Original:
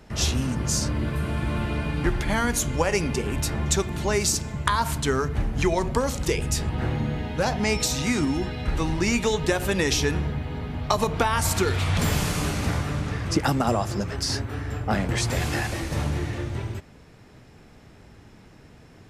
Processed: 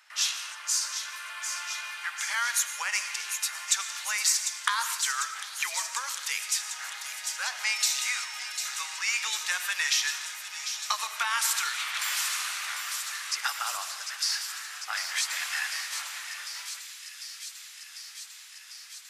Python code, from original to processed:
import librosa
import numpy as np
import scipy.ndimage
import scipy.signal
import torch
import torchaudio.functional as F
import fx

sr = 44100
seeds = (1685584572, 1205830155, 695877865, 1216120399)

p1 = scipy.signal.sosfilt(scipy.signal.cheby2(4, 70, 270.0, 'highpass', fs=sr, output='sos'), x)
p2 = p1 + fx.echo_wet_highpass(p1, sr, ms=748, feedback_pct=78, hz=3500.0, wet_db=-7, dry=0)
y = fx.rev_freeverb(p2, sr, rt60_s=0.89, hf_ratio=0.9, predelay_ms=65, drr_db=10.5)